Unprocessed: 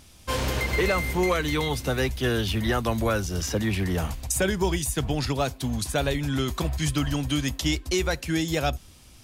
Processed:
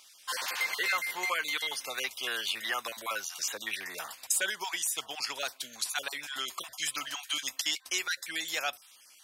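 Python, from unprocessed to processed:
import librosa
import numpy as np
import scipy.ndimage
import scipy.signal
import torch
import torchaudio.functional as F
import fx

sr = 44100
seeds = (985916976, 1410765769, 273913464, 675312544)

y = fx.spec_dropout(x, sr, seeds[0], share_pct=22)
y = scipy.signal.sosfilt(scipy.signal.butter(2, 1200.0, 'highpass', fs=sr, output='sos'), y)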